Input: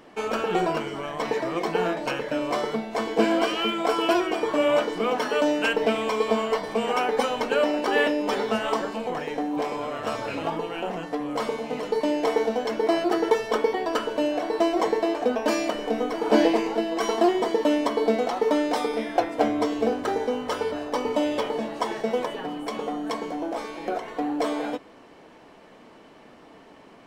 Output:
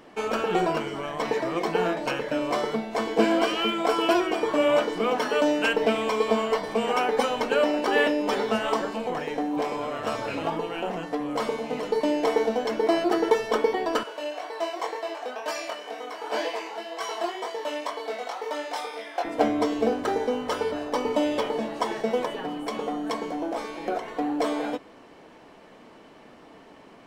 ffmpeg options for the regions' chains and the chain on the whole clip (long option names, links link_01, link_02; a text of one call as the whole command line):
ffmpeg -i in.wav -filter_complex "[0:a]asettb=1/sr,asplit=3[link_01][link_02][link_03];[link_01]atrim=end=14.034[link_04];[link_02]atrim=start=14.03:end=19.25,asetpts=PTS-STARTPTS,afade=type=in:duration=0.004:curve=qsin,afade=type=out:start_time=5.216:duration=0.004:curve=qsin,highpass=700,flanger=delay=19.5:depth=4:speed=2[link_05];[link_03]atrim=start=19.246[link_06];[link_04][link_05]acrossfade=duration=0.004:curve1=hsin:curve2=qsin[link_07];[link_07][link_06]acrossfade=duration=0.004:curve1=qsin:curve2=hsin" out.wav